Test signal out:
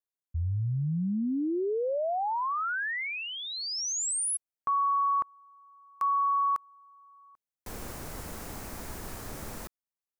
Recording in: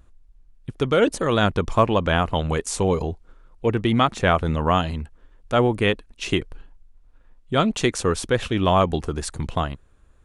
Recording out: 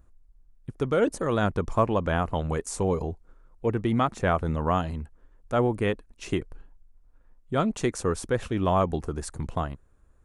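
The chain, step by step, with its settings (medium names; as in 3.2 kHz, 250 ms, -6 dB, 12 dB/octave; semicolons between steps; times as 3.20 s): peaking EQ 3.3 kHz -9 dB 1.3 oct; trim -4.5 dB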